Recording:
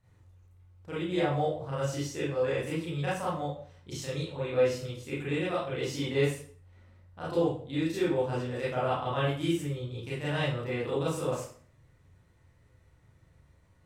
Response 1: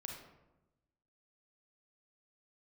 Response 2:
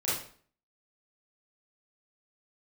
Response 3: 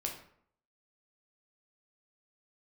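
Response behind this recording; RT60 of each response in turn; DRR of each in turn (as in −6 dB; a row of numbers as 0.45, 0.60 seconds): 2; 1.0, 0.50, 0.65 seconds; 0.5, −9.5, 0.5 decibels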